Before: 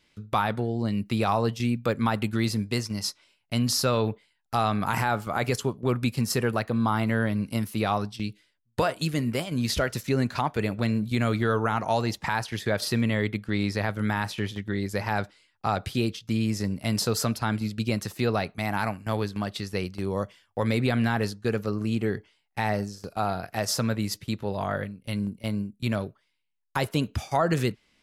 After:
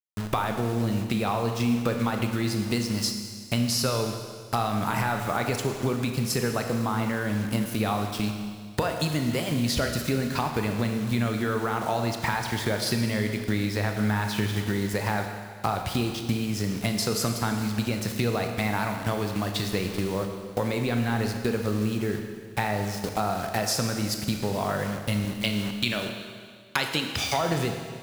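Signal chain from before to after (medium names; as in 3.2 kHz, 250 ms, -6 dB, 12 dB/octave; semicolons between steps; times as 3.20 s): 25.25–27.37 s: frequency weighting D; bit crusher 7-bit; compression 6:1, threshold -32 dBFS, peak gain reduction 14.5 dB; Schroeder reverb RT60 1.9 s, combs from 26 ms, DRR 4.5 dB; trim +8 dB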